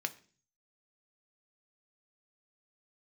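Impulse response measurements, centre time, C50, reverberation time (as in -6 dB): 4 ms, 18.0 dB, 0.40 s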